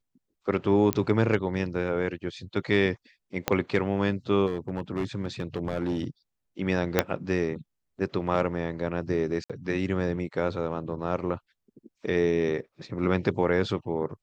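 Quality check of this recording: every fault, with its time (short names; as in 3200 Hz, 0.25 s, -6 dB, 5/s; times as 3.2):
0.93 pop -10 dBFS
3.48 pop -8 dBFS
4.46–6.04 clipped -23 dBFS
6.99 pop -5 dBFS
9.44–9.5 gap 56 ms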